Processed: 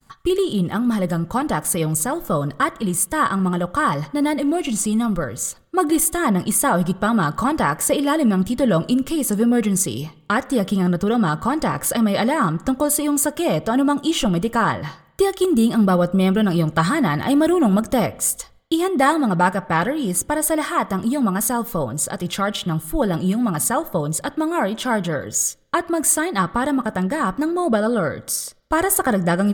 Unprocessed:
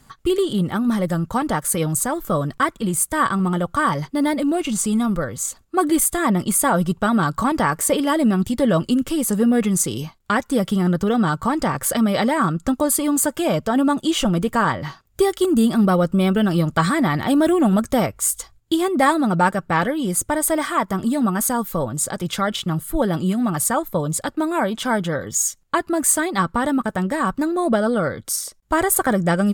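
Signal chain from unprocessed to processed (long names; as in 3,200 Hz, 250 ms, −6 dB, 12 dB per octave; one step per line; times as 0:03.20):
downward expander −48 dBFS
on a send: convolution reverb RT60 0.85 s, pre-delay 32 ms, DRR 18 dB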